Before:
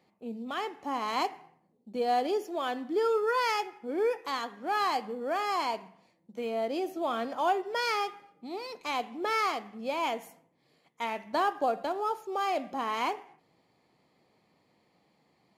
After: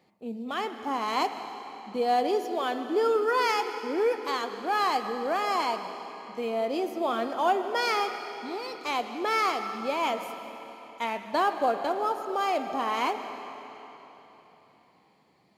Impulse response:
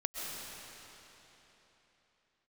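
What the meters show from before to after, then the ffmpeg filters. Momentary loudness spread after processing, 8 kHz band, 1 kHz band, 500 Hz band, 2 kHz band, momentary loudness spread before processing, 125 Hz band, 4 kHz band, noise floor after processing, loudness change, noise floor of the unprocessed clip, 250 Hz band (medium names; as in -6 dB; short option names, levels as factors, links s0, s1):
14 LU, +3.0 dB, +3.0 dB, +3.0 dB, +3.0 dB, 9 LU, no reading, +3.0 dB, -62 dBFS, +3.0 dB, -71 dBFS, +3.0 dB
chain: -filter_complex "[0:a]asplit=2[s0][s1];[1:a]atrim=start_sample=2205[s2];[s1][s2]afir=irnorm=-1:irlink=0,volume=0.398[s3];[s0][s3]amix=inputs=2:normalize=0"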